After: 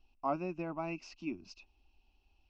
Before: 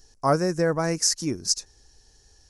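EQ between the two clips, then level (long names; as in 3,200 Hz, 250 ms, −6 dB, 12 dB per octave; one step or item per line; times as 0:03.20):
transistor ladder low-pass 2,700 Hz, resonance 90%
high-frequency loss of the air 92 metres
phaser with its sweep stopped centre 470 Hz, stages 6
+3.5 dB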